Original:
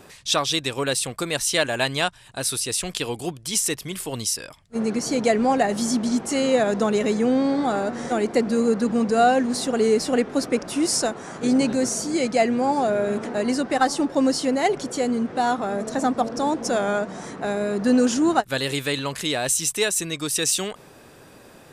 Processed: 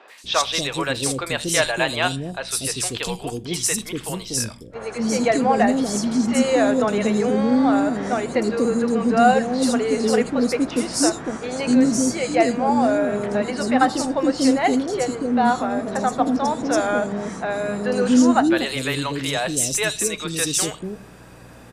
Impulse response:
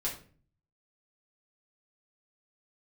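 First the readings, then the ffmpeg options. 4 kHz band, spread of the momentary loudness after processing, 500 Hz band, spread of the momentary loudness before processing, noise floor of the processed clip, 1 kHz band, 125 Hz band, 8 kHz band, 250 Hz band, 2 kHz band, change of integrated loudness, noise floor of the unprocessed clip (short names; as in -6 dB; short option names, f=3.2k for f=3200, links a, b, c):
0.0 dB, 8 LU, +1.0 dB, 6 LU, -42 dBFS, +2.5 dB, +3.0 dB, +0.5 dB, +3.0 dB, +2.5 dB, +2.0 dB, -48 dBFS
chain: -filter_complex "[0:a]highshelf=f=11k:g=-7.5,aeval=exprs='val(0)+0.00398*(sin(2*PI*60*n/s)+sin(2*PI*2*60*n/s)/2+sin(2*PI*3*60*n/s)/3+sin(2*PI*4*60*n/s)/4+sin(2*PI*5*60*n/s)/5)':c=same,acrossover=split=440|3900[a][b][c];[c]adelay=80[d];[a]adelay=240[e];[e][b][d]amix=inputs=3:normalize=0,asplit=2[f][g];[1:a]atrim=start_sample=2205,asetrate=57330,aresample=44100[h];[g][h]afir=irnorm=-1:irlink=0,volume=-12dB[i];[f][i]amix=inputs=2:normalize=0,volume=2dB"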